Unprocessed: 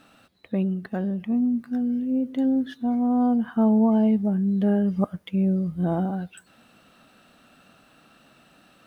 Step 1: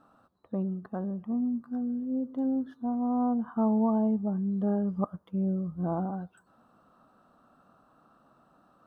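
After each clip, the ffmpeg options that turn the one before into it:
-af "highshelf=f=1600:t=q:w=3:g=-11.5,volume=0.447"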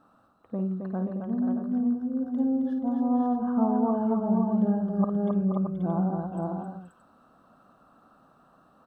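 -af "aecho=1:1:53|267|478|532|625:0.376|0.562|0.376|0.596|0.376"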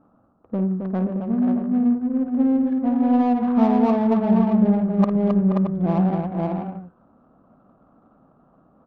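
-af "adynamicsmooth=sensitivity=3.5:basefreq=740,volume=2.24"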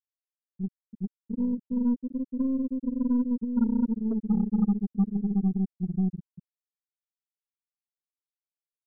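-af "afftfilt=real='re*gte(hypot(re,im),1)':imag='im*gte(hypot(re,im),1)':win_size=1024:overlap=0.75,aeval=exprs='0.355*(cos(1*acos(clip(val(0)/0.355,-1,1)))-cos(1*PI/2))+0.02*(cos(6*acos(clip(val(0)/0.355,-1,1)))-cos(6*PI/2))':c=same,volume=0.501"

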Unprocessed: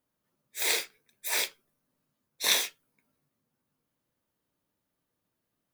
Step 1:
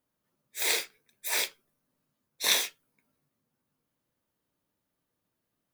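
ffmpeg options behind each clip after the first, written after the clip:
-af anull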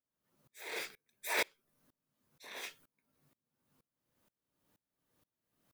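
-filter_complex "[0:a]acrossover=split=2600[s0][s1];[s1]acompressor=threshold=0.00891:ratio=4:attack=1:release=60[s2];[s0][s2]amix=inputs=2:normalize=0,alimiter=level_in=1.78:limit=0.0631:level=0:latency=1:release=35,volume=0.562,aeval=exprs='val(0)*pow(10,-28*if(lt(mod(-2.1*n/s,1),2*abs(-2.1)/1000),1-mod(-2.1*n/s,1)/(2*abs(-2.1)/1000),(mod(-2.1*n/s,1)-2*abs(-2.1)/1000)/(1-2*abs(-2.1)/1000))/20)':c=same,volume=3.16"

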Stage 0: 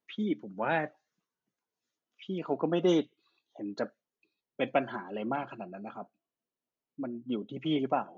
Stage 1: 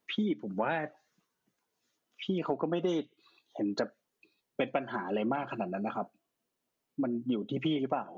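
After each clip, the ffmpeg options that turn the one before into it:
-af "acompressor=threshold=0.0158:ratio=8,volume=2.66"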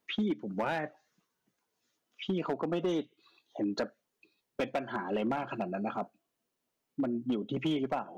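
-af "asoftclip=type=hard:threshold=0.0596"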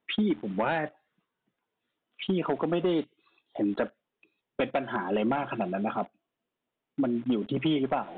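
-filter_complex "[0:a]asplit=2[s0][s1];[s1]acrusher=bits=7:mix=0:aa=0.000001,volume=0.708[s2];[s0][s2]amix=inputs=2:normalize=0,aresample=8000,aresample=44100"

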